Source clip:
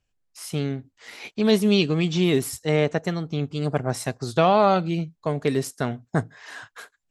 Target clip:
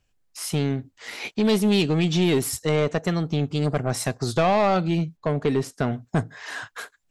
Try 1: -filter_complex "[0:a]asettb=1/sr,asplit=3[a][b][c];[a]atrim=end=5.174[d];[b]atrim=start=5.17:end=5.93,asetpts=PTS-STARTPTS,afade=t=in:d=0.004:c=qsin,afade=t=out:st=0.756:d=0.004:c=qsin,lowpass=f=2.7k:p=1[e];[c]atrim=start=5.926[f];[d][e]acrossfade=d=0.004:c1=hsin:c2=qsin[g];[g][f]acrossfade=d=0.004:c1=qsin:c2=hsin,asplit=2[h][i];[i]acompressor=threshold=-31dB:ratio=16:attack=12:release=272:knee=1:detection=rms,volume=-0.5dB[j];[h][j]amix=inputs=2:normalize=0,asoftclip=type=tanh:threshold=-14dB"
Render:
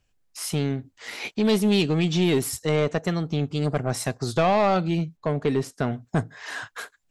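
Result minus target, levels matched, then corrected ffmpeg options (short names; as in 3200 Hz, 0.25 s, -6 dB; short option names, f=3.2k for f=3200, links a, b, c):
compressor: peak gain reduction +6 dB
-filter_complex "[0:a]asettb=1/sr,asplit=3[a][b][c];[a]atrim=end=5.174[d];[b]atrim=start=5.17:end=5.93,asetpts=PTS-STARTPTS,afade=t=in:d=0.004:c=qsin,afade=t=out:st=0.756:d=0.004:c=qsin,lowpass=f=2.7k:p=1[e];[c]atrim=start=5.926[f];[d][e]acrossfade=d=0.004:c1=hsin:c2=qsin[g];[g][f]acrossfade=d=0.004:c1=qsin:c2=hsin,asplit=2[h][i];[i]acompressor=threshold=-24.5dB:ratio=16:attack=12:release=272:knee=1:detection=rms,volume=-0.5dB[j];[h][j]amix=inputs=2:normalize=0,asoftclip=type=tanh:threshold=-14dB"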